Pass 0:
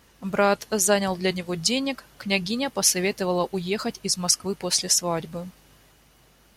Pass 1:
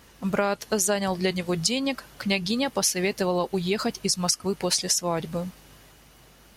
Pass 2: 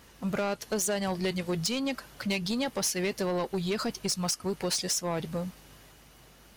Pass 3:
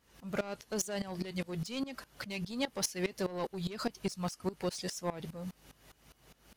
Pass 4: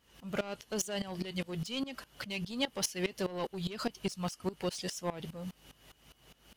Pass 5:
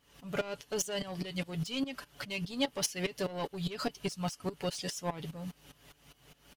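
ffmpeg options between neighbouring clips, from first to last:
ffmpeg -i in.wav -af "acompressor=threshold=-25dB:ratio=5,volume=4dB" out.wav
ffmpeg -i in.wav -af "asoftclip=type=tanh:threshold=-21.5dB,volume=-2dB" out.wav
ffmpeg -i in.wav -af "aeval=exprs='val(0)*pow(10,-19*if(lt(mod(-4.9*n/s,1),2*abs(-4.9)/1000),1-mod(-4.9*n/s,1)/(2*abs(-4.9)/1000),(mod(-4.9*n/s,1)-2*abs(-4.9)/1000)/(1-2*abs(-4.9)/1000))/20)':channel_layout=same" out.wav
ffmpeg -i in.wav -af "equalizer=frequency=3000:width=4.8:gain=8" out.wav
ffmpeg -i in.wav -af "aecho=1:1:7:0.49" out.wav

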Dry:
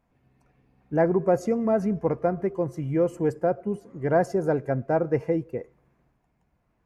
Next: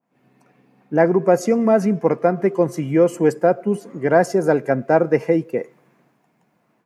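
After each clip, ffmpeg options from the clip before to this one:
ffmpeg -i in.wav -af "highpass=frequency=160:width=0.5412,highpass=frequency=160:width=1.3066,dynaudnorm=framelen=100:gausssize=3:maxgain=12dB,adynamicequalizer=threshold=0.0282:dfrequency=1600:dqfactor=0.7:tfrequency=1600:tqfactor=0.7:attack=5:release=100:ratio=0.375:range=3:mode=boostabove:tftype=highshelf,volume=-2dB" out.wav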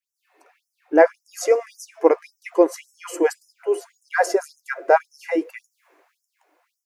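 ffmpeg -i in.wav -af "afftfilt=real='re*gte(b*sr/1024,270*pow(5300/270,0.5+0.5*sin(2*PI*1.8*pts/sr)))':imag='im*gte(b*sr/1024,270*pow(5300/270,0.5+0.5*sin(2*PI*1.8*pts/sr)))':win_size=1024:overlap=0.75,volume=3dB" out.wav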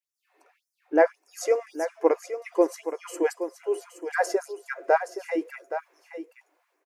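ffmpeg -i in.wav -af "aecho=1:1:821:0.299,volume=-5.5dB" out.wav

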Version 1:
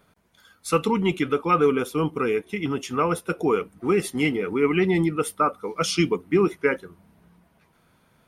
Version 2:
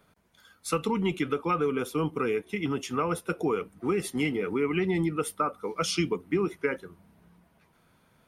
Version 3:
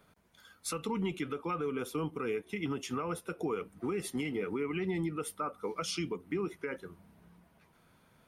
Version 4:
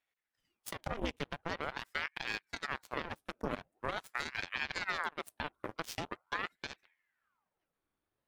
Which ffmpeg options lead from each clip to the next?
ffmpeg -i in.wav -filter_complex "[0:a]acrossover=split=120[link_01][link_02];[link_02]acompressor=threshold=-21dB:ratio=5[link_03];[link_01][link_03]amix=inputs=2:normalize=0,volume=-2.5dB" out.wav
ffmpeg -i in.wav -af "alimiter=level_in=0.5dB:limit=-24dB:level=0:latency=1:release=231,volume=-0.5dB,volume=-1dB" out.wav
ffmpeg -i in.wav -af "aeval=exprs='0.0562*(cos(1*acos(clip(val(0)/0.0562,-1,1)))-cos(1*PI/2))+0.02*(cos(3*acos(clip(val(0)/0.0562,-1,1)))-cos(3*PI/2))+0.000355*(cos(6*acos(clip(val(0)/0.0562,-1,1)))-cos(6*PI/2))':channel_layout=same,aeval=exprs='val(0)*sin(2*PI*1100*n/s+1100*0.9/0.44*sin(2*PI*0.44*n/s))':channel_layout=same,volume=3.5dB" out.wav

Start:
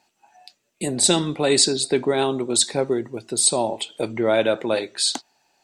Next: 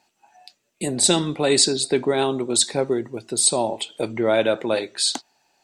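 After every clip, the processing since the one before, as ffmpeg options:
ffmpeg -i in.wav -af anull out.wav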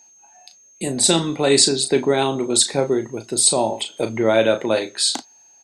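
ffmpeg -i in.wav -filter_complex "[0:a]dynaudnorm=framelen=460:gausssize=5:maxgain=5dB,aeval=exprs='val(0)+0.00398*sin(2*PI*6400*n/s)':channel_layout=same,asplit=2[link_01][link_02];[link_02]adelay=36,volume=-9dB[link_03];[link_01][link_03]amix=inputs=2:normalize=0" out.wav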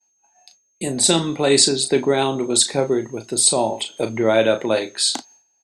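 ffmpeg -i in.wav -af "agate=range=-33dB:threshold=-42dB:ratio=3:detection=peak" out.wav

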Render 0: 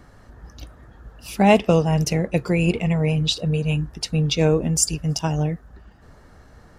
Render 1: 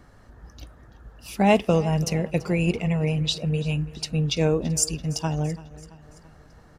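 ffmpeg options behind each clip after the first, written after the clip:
ffmpeg -i in.wav -af "aecho=1:1:335|670|1005|1340:0.112|0.0595|0.0315|0.0167,volume=-3.5dB" out.wav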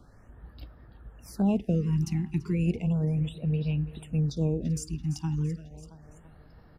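ffmpeg -i in.wav -filter_complex "[0:a]lowshelf=frequency=370:gain=4.5,acrossover=split=370[link_01][link_02];[link_02]acompressor=threshold=-37dB:ratio=2.5[link_03];[link_01][link_03]amix=inputs=2:normalize=0,afftfilt=real='re*(1-between(b*sr/1024,510*pow(7800/510,0.5+0.5*sin(2*PI*0.34*pts/sr))/1.41,510*pow(7800/510,0.5+0.5*sin(2*PI*0.34*pts/sr))*1.41))':imag='im*(1-between(b*sr/1024,510*pow(7800/510,0.5+0.5*sin(2*PI*0.34*pts/sr))/1.41,510*pow(7800/510,0.5+0.5*sin(2*PI*0.34*pts/sr))*1.41))':win_size=1024:overlap=0.75,volume=-6dB" out.wav

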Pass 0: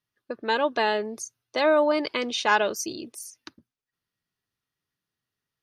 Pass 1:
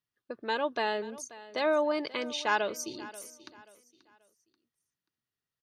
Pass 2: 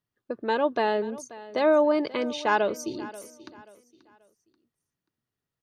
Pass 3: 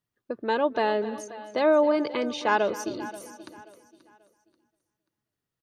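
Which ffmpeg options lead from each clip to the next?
ffmpeg -i in.wav -af "aecho=1:1:534|1068|1602:0.126|0.0415|0.0137,volume=-6.5dB" out.wav
ffmpeg -i in.wav -af "tiltshelf=frequency=1200:gain=5.5,volume=3.5dB" out.wav
ffmpeg -i in.wav -af "aecho=1:1:264|528|792|1056:0.158|0.0729|0.0335|0.0154" out.wav

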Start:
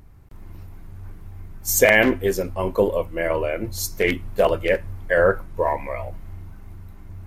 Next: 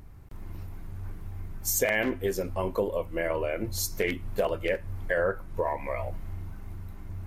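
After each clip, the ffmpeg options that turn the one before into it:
ffmpeg -i in.wav -af "acompressor=threshold=-28dB:ratio=2.5" out.wav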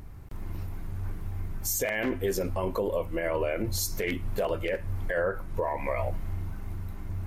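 ffmpeg -i in.wav -af "alimiter=limit=-23.5dB:level=0:latency=1:release=50,volume=4dB" out.wav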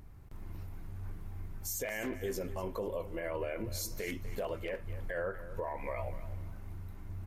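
ffmpeg -i in.wav -af "aecho=1:1:246|492|738:0.2|0.0559|0.0156,volume=-8.5dB" out.wav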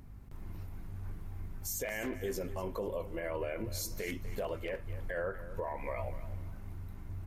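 ffmpeg -i in.wav -af "aeval=exprs='val(0)+0.00251*(sin(2*PI*50*n/s)+sin(2*PI*2*50*n/s)/2+sin(2*PI*3*50*n/s)/3+sin(2*PI*4*50*n/s)/4+sin(2*PI*5*50*n/s)/5)':channel_layout=same" out.wav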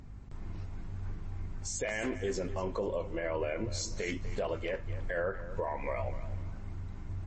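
ffmpeg -i in.wav -af "volume=3.5dB" -ar 22050 -c:a libmp3lame -b:a 32k out.mp3

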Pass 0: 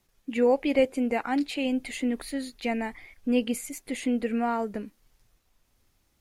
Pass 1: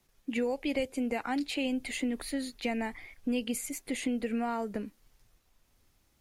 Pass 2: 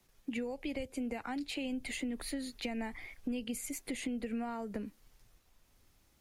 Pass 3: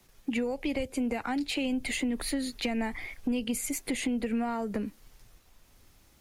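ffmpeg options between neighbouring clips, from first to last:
ffmpeg -i in.wav -filter_complex "[0:a]acrossover=split=130|3000[link_01][link_02][link_03];[link_02]acompressor=threshold=-29dB:ratio=6[link_04];[link_01][link_04][link_03]amix=inputs=3:normalize=0" out.wav
ffmpeg -i in.wav -filter_complex "[0:a]acrossover=split=160[link_01][link_02];[link_02]acompressor=threshold=-38dB:ratio=6[link_03];[link_01][link_03]amix=inputs=2:normalize=0,volume=1dB" out.wav
ffmpeg -i in.wav -af "asoftclip=type=tanh:threshold=-26.5dB,volume=8dB" out.wav

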